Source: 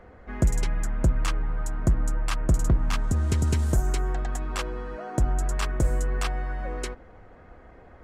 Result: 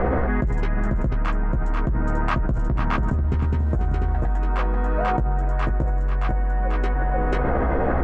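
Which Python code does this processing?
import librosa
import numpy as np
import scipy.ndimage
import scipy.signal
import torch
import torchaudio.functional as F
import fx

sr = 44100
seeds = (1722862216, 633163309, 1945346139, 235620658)

p1 = scipy.signal.sosfilt(scipy.signal.butter(2, 1600.0, 'lowpass', fs=sr, output='sos'), x)
p2 = fx.peak_eq(p1, sr, hz=91.0, db=-8.0, octaves=0.26)
p3 = 10.0 ** (-25.5 / 20.0) * np.tanh(p2 / 10.0 ** (-25.5 / 20.0))
p4 = p2 + F.gain(torch.from_numpy(p3), -4.0).numpy()
p5 = fx.doubler(p4, sr, ms=15.0, db=-5)
p6 = p5 + fx.echo_single(p5, sr, ms=490, db=-6.0, dry=0)
p7 = fx.env_flatten(p6, sr, amount_pct=100)
y = F.gain(torch.from_numpy(p7), -8.0).numpy()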